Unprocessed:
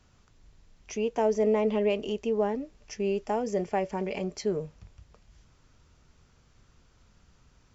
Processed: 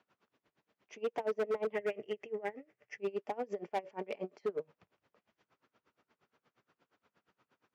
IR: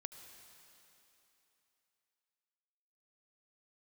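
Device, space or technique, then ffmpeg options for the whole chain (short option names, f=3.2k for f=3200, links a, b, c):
helicopter radio: -filter_complex "[0:a]highpass=320,lowpass=2.6k,aeval=exprs='val(0)*pow(10,-26*(0.5-0.5*cos(2*PI*8.5*n/s))/20)':c=same,asoftclip=type=hard:threshold=-28.5dB,asettb=1/sr,asplit=3[a][b][c];[a]atrim=end=1.724[d];[b]atrim=start=1.72:end=2.98,asetpts=PTS-STARTPTS,afade=t=in:d=0.004:c=qsin,afade=t=out:st=1.256:d=0.004:c=qsin,equalizer=f=125:t=o:w=0.33:g=12,equalizer=f=250:t=o:w=0.33:g=-11,equalizer=f=1k:t=o:w=0.33:g=-8,equalizer=f=2k:t=o:w=0.33:g=11,equalizer=f=4k:t=o:w=0.33:g=-11[e];[c]atrim=start=2.976[f];[d][e]acrossfade=d=0.004:c1=hsin:c2=qsin[g];[g][f]acrossfade=d=0.004:c1=qsin:c2=hsin,highpass=78"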